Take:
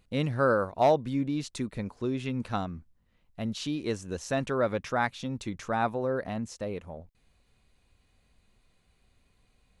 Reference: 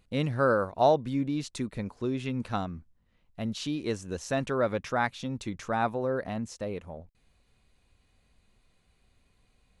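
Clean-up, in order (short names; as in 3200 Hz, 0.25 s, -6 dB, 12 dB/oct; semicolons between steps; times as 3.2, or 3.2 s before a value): clip repair -14 dBFS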